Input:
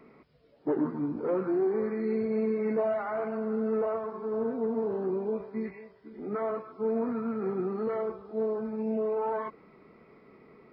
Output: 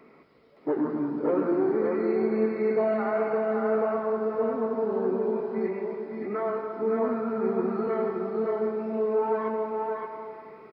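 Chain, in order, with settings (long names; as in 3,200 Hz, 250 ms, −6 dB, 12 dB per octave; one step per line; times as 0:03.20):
low-shelf EQ 170 Hz −10 dB
single-tap delay 567 ms −3.5 dB
on a send at −5 dB: convolution reverb RT60 2.2 s, pre-delay 103 ms
on the sum: level +3 dB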